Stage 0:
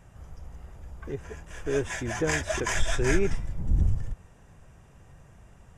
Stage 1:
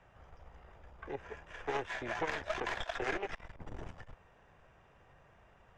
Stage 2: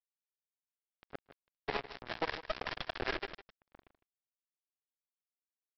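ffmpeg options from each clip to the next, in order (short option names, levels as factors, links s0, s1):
-filter_complex "[0:a]aeval=exprs='0.316*(cos(1*acos(clip(val(0)/0.316,-1,1)))-cos(1*PI/2))+0.158*(cos(4*acos(clip(val(0)/0.316,-1,1)))-cos(4*PI/2))':c=same,acrossover=split=450|1200[s0][s1][s2];[s0]acompressor=threshold=0.0316:ratio=4[s3];[s1]acompressor=threshold=0.0178:ratio=4[s4];[s2]acompressor=threshold=0.0158:ratio=4[s5];[s3][s4][s5]amix=inputs=3:normalize=0,acrossover=split=390 4200:gain=0.251 1 0.0631[s6][s7][s8];[s6][s7][s8]amix=inputs=3:normalize=0,volume=0.794"
-af "aresample=11025,acrusher=bits=4:mix=0:aa=0.5,aresample=44100,aecho=1:1:156:0.188"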